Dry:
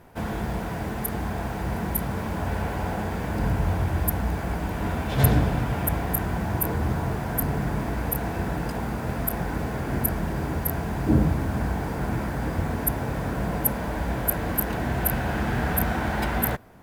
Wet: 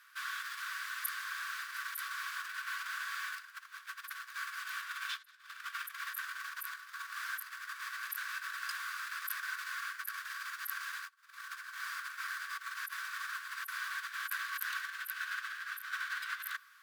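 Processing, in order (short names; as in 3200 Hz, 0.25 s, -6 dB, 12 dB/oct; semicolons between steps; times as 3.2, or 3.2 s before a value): negative-ratio compressor -28 dBFS, ratio -0.5; rippled Chebyshev high-pass 1100 Hz, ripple 6 dB; gain +1 dB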